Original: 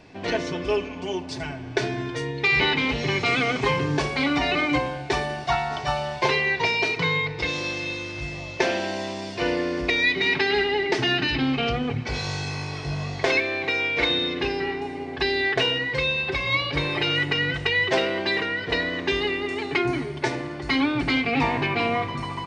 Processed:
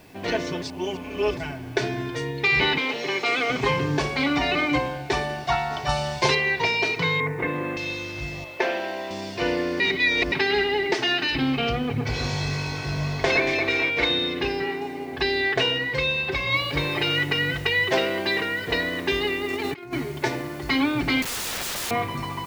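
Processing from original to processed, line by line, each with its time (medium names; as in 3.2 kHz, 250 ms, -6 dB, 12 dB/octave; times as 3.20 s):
0.62–1.37 s: reverse
2.78–3.50 s: Chebyshev high-pass 390 Hz
5.89–6.35 s: tone controls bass +5 dB, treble +10 dB
7.20–7.77 s: cabinet simulation 110–2100 Hz, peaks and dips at 140 Hz +6 dB, 260 Hz +9 dB, 410 Hz +5 dB, 680 Hz +3 dB, 1.1 kHz +5 dB, 1.8 kHz +6 dB
8.44–9.11 s: tone controls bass -14 dB, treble -12 dB
9.80–10.32 s: reverse
10.94–11.35 s: tone controls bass -13 dB, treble +2 dB
11.86–13.90 s: echo whose repeats swap between lows and highs 115 ms, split 1.8 kHz, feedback 75%, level -3 dB
14.63–15.13 s: high-pass 130 Hz
16.55 s: noise floor step -61 dB -51 dB
19.50–19.93 s: compressor with a negative ratio -30 dBFS, ratio -0.5
21.22–21.91 s: integer overflow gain 25 dB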